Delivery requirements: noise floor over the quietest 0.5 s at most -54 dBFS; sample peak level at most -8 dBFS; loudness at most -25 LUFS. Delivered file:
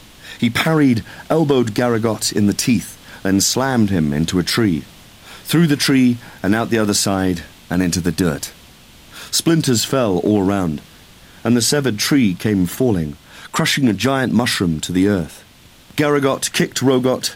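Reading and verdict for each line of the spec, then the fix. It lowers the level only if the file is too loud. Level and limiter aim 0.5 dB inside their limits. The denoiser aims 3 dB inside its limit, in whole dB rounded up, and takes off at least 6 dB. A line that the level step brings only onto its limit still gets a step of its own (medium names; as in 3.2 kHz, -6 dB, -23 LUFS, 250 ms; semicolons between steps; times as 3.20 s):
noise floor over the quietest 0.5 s -45 dBFS: fail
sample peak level -4.5 dBFS: fail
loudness -17.0 LUFS: fail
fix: noise reduction 6 dB, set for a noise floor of -45 dBFS; trim -8.5 dB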